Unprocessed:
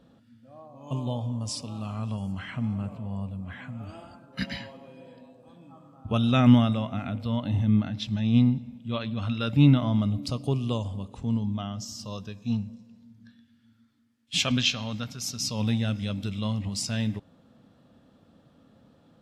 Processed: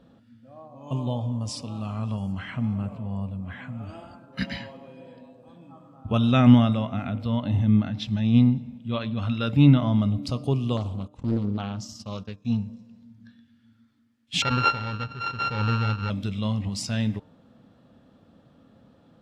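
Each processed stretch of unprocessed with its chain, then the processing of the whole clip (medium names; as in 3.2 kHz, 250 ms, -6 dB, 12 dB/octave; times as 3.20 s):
10.77–12.45 s: gate -41 dBFS, range -13 dB + loudspeaker Doppler distortion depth 0.85 ms
14.42–16.10 s: sorted samples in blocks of 32 samples + inverse Chebyshev low-pass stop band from 9.9 kHz, stop band 50 dB + comb 2.2 ms, depth 50%
whole clip: treble shelf 5 kHz -7 dB; de-hum 150.3 Hz, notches 9; trim +2.5 dB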